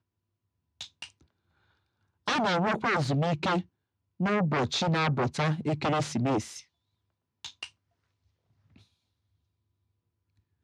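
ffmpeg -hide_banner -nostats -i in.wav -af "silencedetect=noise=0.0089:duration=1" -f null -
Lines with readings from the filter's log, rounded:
silence_start: 1.10
silence_end: 2.28 | silence_duration: 1.17
silence_start: 7.66
silence_end: 10.64 | silence_duration: 2.97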